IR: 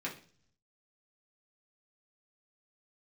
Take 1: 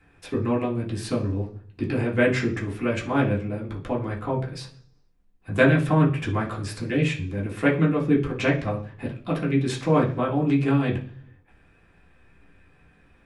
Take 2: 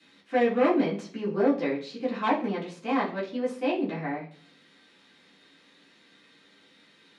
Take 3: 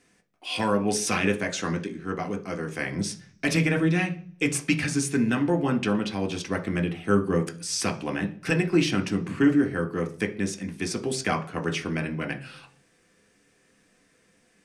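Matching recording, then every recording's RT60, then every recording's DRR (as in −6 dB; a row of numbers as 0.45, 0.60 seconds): 1; 0.45, 0.45, 0.45 seconds; −4.5, −9.0, 4.0 decibels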